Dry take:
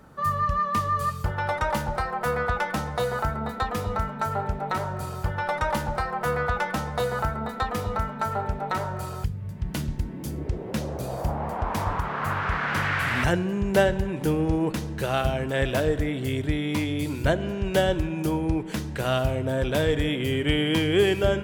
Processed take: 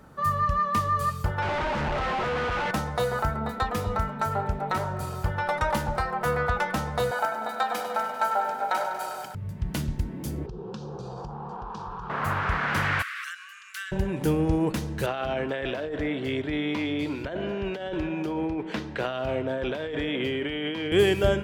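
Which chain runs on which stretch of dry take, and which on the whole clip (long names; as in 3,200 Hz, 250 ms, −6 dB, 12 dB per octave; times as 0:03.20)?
0:01.42–0:02.71: sign of each sample alone + low-pass filter 2,600 Hz
0:07.11–0:09.35: high-pass filter 300 Hz 24 dB per octave + comb filter 1.3 ms, depth 58% + feedback echo at a low word length 99 ms, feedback 80%, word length 9 bits, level −11 dB
0:10.46–0:12.10: phaser with its sweep stopped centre 410 Hz, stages 8 + downward compressor 10 to 1, threshold −32 dBFS + low-pass filter 5,500 Hz 24 dB per octave
0:13.02–0:13.92: Chebyshev high-pass filter 1,100 Hz, order 10 + downward compressor 2 to 1, threshold −38 dBFS
0:15.06–0:20.92: three-way crossover with the lows and the highs turned down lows −12 dB, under 230 Hz, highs −21 dB, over 4,600 Hz + compressor whose output falls as the input rises −29 dBFS
whole clip: no processing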